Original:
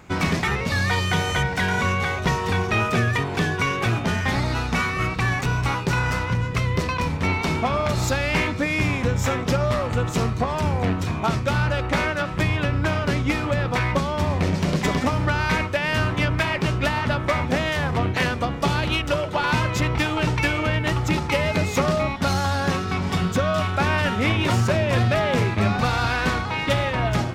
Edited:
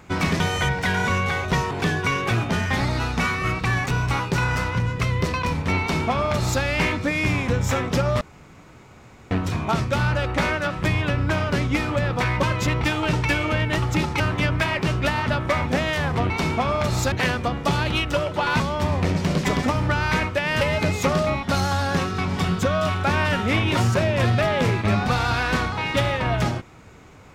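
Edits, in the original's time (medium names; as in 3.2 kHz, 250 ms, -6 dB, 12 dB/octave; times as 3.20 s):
0.40–1.14 s: delete
2.45–3.26 s: delete
7.35–8.17 s: copy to 18.09 s
9.76–10.86 s: room tone
13.98–15.99 s: swap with 19.57–21.34 s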